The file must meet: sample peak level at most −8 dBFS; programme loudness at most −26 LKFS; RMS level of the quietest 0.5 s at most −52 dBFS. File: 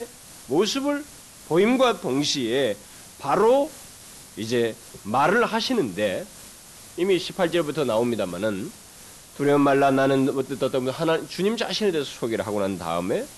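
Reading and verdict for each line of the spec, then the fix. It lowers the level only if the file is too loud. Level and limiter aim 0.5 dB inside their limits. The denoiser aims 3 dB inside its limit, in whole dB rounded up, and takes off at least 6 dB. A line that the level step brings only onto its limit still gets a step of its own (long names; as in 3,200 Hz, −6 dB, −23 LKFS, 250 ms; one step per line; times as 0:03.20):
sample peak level −8.5 dBFS: in spec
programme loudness −23.5 LKFS: out of spec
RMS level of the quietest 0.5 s −46 dBFS: out of spec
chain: broadband denoise 6 dB, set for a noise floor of −46 dBFS
level −3 dB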